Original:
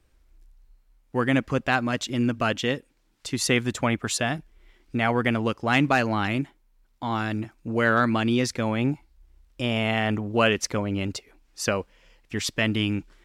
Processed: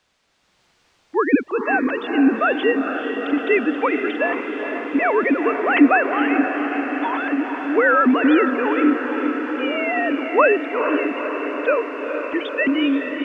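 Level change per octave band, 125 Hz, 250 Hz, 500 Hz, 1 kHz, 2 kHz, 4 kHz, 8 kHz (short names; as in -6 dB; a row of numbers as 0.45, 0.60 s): under -20 dB, +7.5 dB, +8.5 dB, +7.0 dB, +6.5 dB, -3.5 dB, under -25 dB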